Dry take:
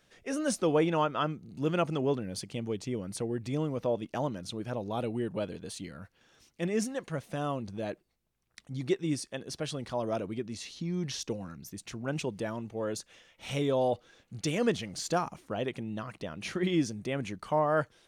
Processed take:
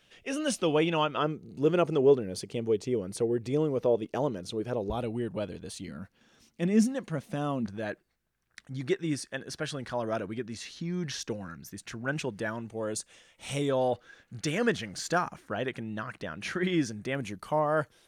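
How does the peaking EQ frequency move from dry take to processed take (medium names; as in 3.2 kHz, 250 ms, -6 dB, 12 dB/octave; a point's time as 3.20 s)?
peaking EQ +10 dB 0.59 oct
2.9 kHz
from 1.17 s 420 Hz
from 4.90 s 64 Hz
from 5.88 s 220 Hz
from 7.66 s 1.6 kHz
from 12.69 s 8.5 kHz
from 13.69 s 1.6 kHz
from 17.15 s 12 kHz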